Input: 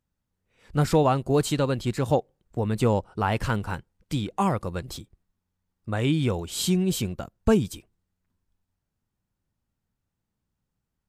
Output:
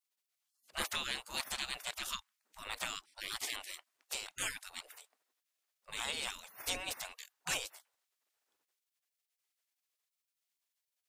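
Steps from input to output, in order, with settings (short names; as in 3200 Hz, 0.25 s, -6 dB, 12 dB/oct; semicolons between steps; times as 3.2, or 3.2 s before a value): spectral gate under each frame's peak -30 dB weak; gain +6.5 dB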